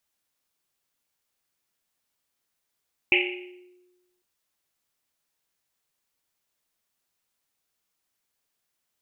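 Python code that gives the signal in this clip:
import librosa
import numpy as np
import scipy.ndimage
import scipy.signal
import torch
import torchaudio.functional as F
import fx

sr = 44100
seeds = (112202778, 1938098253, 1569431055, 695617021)

y = fx.risset_drum(sr, seeds[0], length_s=1.1, hz=360.0, decay_s=1.26, noise_hz=2500.0, noise_width_hz=740.0, noise_pct=60)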